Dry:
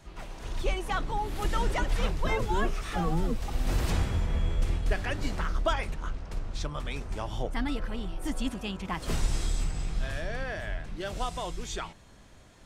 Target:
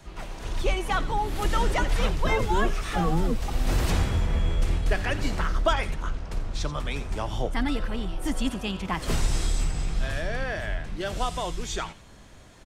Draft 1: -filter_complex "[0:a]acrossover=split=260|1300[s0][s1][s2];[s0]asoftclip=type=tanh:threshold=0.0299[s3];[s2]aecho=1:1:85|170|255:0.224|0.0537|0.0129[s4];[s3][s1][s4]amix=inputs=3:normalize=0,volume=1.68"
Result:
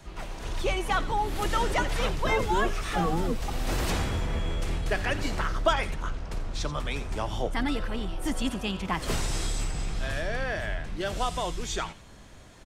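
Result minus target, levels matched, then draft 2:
saturation: distortion +14 dB
-filter_complex "[0:a]acrossover=split=260|1300[s0][s1][s2];[s0]asoftclip=type=tanh:threshold=0.119[s3];[s2]aecho=1:1:85|170|255:0.224|0.0537|0.0129[s4];[s3][s1][s4]amix=inputs=3:normalize=0,volume=1.68"

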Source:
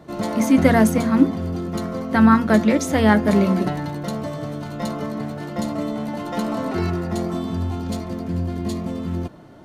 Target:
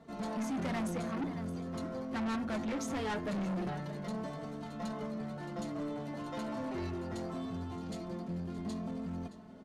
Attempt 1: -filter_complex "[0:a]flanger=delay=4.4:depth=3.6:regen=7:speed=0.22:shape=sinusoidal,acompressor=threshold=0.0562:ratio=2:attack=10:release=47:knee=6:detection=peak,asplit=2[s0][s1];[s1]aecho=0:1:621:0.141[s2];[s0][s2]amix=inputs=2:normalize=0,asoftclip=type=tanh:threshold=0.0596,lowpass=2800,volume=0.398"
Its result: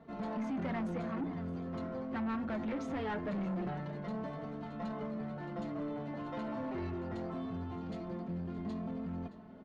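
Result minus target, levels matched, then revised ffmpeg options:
8 kHz band -16.0 dB; compression: peak gain reduction +8 dB
-filter_complex "[0:a]flanger=delay=4.4:depth=3.6:regen=7:speed=0.22:shape=sinusoidal,asplit=2[s0][s1];[s1]aecho=0:1:621:0.141[s2];[s0][s2]amix=inputs=2:normalize=0,asoftclip=type=tanh:threshold=0.0596,lowpass=10000,volume=0.398"

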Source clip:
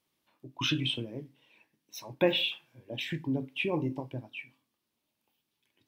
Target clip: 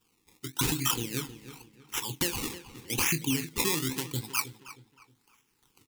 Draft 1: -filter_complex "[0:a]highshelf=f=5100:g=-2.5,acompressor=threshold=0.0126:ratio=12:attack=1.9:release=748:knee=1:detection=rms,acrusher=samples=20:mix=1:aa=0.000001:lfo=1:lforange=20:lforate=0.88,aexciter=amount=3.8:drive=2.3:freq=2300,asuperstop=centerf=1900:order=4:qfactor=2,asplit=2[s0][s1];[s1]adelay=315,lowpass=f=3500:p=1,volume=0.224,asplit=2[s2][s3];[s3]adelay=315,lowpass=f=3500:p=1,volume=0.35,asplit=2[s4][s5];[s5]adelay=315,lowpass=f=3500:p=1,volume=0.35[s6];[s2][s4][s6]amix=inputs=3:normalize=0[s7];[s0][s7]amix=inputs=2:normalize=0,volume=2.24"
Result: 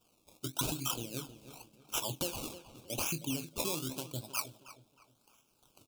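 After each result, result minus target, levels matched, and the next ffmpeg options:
compression: peak gain reduction +7.5 dB; 2 kHz band -4.0 dB
-filter_complex "[0:a]highshelf=f=5100:g=-2.5,acompressor=threshold=0.0316:ratio=12:attack=1.9:release=748:knee=1:detection=rms,acrusher=samples=20:mix=1:aa=0.000001:lfo=1:lforange=20:lforate=0.88,aexciter=amount=3.8:drive=2.3:freq=2300,asuperstop=centerf=1900:order=4:qfactor=2,asplit=2[s0][s1];[s1]adelay=315,lowpass=f=3500:p=1,volume=0.224,asplit=2[s2][s3];[s3]adelay=315,lowpass=f=3500:p=1,volume=0.35,asplit=2[s4][s5];[s5]adelay=315,lowpass=f=3500:p=1,volume=0.35[s6];[s2][s4][s6]amix=inputs=3:normalize=0[s7];[s0][s7]amix=inputs=2:normalize=0,volume=2.24"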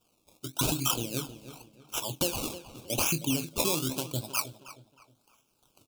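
2 kHz band -4.0 dB
-filter_complex "[0:a]highshelf=f=5100:g=-2.5,acompressor=threshold=0.0316:ratio=12:attack=1.9:release=748:knee=1:detection=rms,acrusher=samples=20:mix=1:aa=0.000001:lfo=1:lforange=20:lforate=0.88,aexciter=amount=3.8:drive=2.3:freq=2300,asuperstop=centerf=620:order=4:qfactor=2,asplit=2[s0][s1];[s1]adelay=315,lowpass=f=3500:p=1,volume=0.224,asplit=2[s2][s3];[s3]adelay=315,lowpass=f=3500:p=1,volume=0.35,asplit=2[s4][s5];[s5]adelay=315,lowpass=f=3500:p=1,volume=0.35[s6];[s2][s4][s6]amix=inputs=3:normalize=0[s7];[s0][s7]amix=inputs=2:normalize=0,volume=2.24"

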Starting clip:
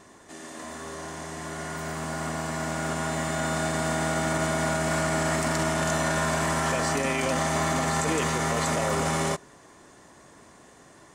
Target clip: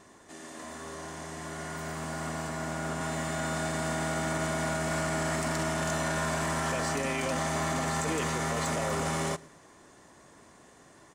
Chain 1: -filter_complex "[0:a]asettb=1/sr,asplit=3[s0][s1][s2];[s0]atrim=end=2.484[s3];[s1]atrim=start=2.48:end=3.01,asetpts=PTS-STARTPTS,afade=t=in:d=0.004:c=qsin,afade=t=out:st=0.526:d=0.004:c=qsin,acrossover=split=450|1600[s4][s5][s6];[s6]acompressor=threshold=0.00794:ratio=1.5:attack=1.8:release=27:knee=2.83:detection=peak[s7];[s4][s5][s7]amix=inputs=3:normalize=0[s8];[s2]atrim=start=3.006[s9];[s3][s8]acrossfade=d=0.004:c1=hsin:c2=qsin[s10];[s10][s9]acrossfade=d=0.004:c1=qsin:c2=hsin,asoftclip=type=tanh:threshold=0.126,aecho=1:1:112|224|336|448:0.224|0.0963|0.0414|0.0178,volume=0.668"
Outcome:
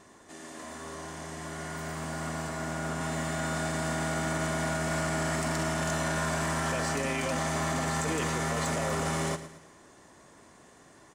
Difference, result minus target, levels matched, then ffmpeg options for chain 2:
echo-to-direct +11 dB
-filter_complex "[0:a]asettb=1/sr,asplit=3[s0][s1][s2];[s0]atrim=end=2.484[s3];[s1]atrim=start=2.48:end=3.01,asetpts=PTS-STARTPTS,afade=t=in:d=0.004:c=qsin,afade=t=out:st=0.526:d=0.004:c=qsin,acrossover=split=450|1600[s4][s5][s6];[s6]acompressor=threshold=0.00794:ratio=1.5:attack=1.8:release=27:knee=2.83:detection=peak[s7];[s4][s5][s7]amix=inputs=3:normalize=0[s8];[s2]atrim=start=3.006[s9];[s3][s8]acrossfade=d=0.004:c1=hsin:c2=qsin[s10];[s10][s9]acrossfade=d=0.004:c1=qsin:c2=hsin,asoftclip=type=tanh:threshold=0.126,aecho=1:1:112|224|336:0.0631|0.0271|0.0117,volume=0.668"

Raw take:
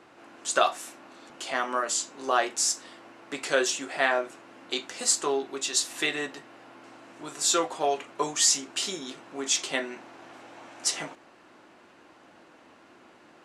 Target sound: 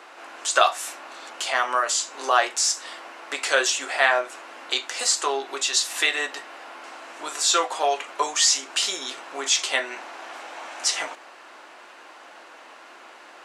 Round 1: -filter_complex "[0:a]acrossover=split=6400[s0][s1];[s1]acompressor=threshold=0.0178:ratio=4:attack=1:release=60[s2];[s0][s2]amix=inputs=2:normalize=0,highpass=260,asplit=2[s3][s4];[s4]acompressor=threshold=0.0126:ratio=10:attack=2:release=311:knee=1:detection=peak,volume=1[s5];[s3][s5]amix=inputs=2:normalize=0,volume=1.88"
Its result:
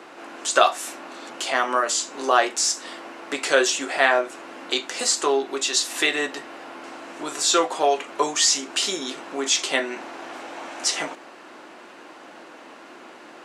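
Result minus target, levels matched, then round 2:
250 Hz band +9.5 dB
-filter_complex "[0:a]acrossover=split=6400[s0][s1];[s1]acompressor=threshold=0.0178:ratio=4:attack=1:release=60[s2];[s0][s2]amix=inputs=2:normalize=0,highpass=640,asplit=2[s3][s4];[s4]acompressor=threshold=0.0126:ratio=10:attack=2:release=311:knee=1:detection=peak,volume=1[s5];[s3][s5]amix=inputs=2:normalize=0,volume=1.88"

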